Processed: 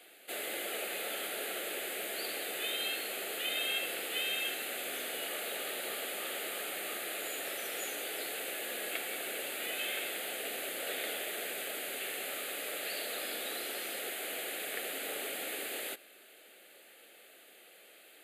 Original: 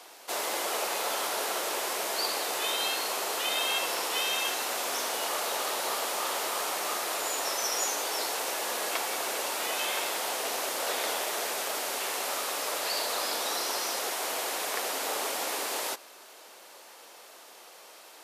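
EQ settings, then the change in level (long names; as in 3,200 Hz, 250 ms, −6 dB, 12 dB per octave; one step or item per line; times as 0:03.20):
phaser with its sweep stopped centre 2,400 Hz, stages 4
−2.5 dB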